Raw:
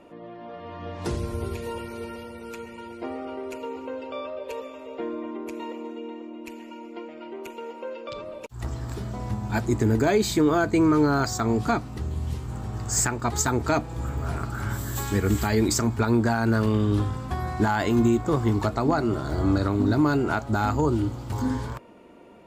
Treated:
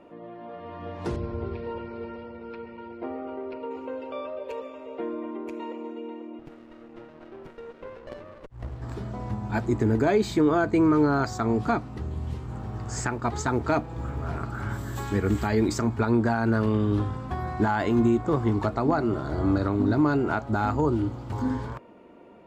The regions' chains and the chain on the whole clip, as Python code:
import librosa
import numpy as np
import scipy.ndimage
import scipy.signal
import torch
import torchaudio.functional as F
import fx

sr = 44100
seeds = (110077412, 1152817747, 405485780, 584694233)

y = fx.chain(x, sr, fx.high_shelf(hz=3500.0, db=-11.0),
    fx.resample_bad(factor=4, down='none', up='filtered'), at=(1.16, 3.71))
y = fx.chain(y, sr, fx.peak_eq(hz=260.0, db=-6.0, octaves=2.3),
    fx.running_max(window=33), at=(6.39, 8.82))
y = fx.chain(y, sr, fx.lowpass(hz=8300.0, slope=12),
    fx.quant_float(bits=4), at=(12.59, 14.38))
y = fx.lowpass(y, sr, hz=2100.0, slope=6)
y = fx.low_shelf(y, sr, hz=110.0, db=-4.5)